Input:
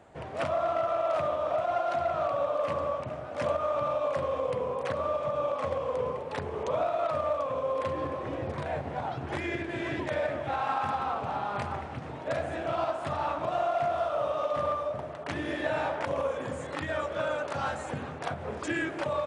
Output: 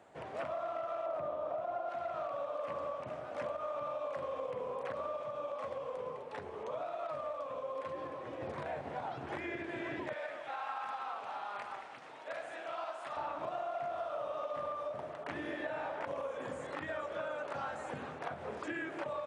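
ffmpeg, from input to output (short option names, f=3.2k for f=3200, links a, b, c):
-filter_complex "[0:a]asettb=1/sr,asplit=3[a][b][c];[a]atrim=end=1.064[d];[b]atrim=start=1.06:end=1.89,asetpts=PTS-STARTPTS,afade=t=in:d=0.004:c=qsin,afade=t=out:st=0.826:d=0.004:c=qsin,tiltshelf=f=1.4k:g=7[e];[c]atrim=start=1.886[f];[d][e]acrossfade=d=0.004:c1=hsin:c2=qsin[g];[g][f]acrossfade=d=0.004:c1=qsin:c2=hsin,asplit=3[h][i][j];[h]afade=t=out:st=5.22:d=0.02[k];[i]flanger=delay=4.9:depth=6.1:regen=65:speed=1:shape=triangular,afade=t=in:st=5.22:d=0.02,afade=t=out:st=8.4:d=0.02[l];[j]afade=t=in:st=8.4:d=0.02[m];[k][l][m]amix=inputs=3:normalize=0,asettb=1/sr,asplit=3[n][o][p];[n]atrim=end=10.134[q];[o]atrim=start=10.13:end=13.17,asetpts=PTS-STARTPTS,afade=t=in:d=0.004:c=qsin,afade=t=out:st=3.036:d=0.004:c=qsin,highpass=f=1.2k:p=1[r];[p]atrim=start=13.166[s];[q][r]acrossfade=d=0.004:c1=hsin:c2=qsin[t];[t][s]acrossfade=d=0.004:c1=qsin:c2=hsin,acrossover=split=2700[u][v];[v]acompressor=threshold=-53dB:ratio=4:attack=1:release=60[w];[u][w]amix=inputs=2:normalize=0,highpass=f=270:p=1,acompressor=threshold=-32dB:ratio=6,volume=-3.5dB"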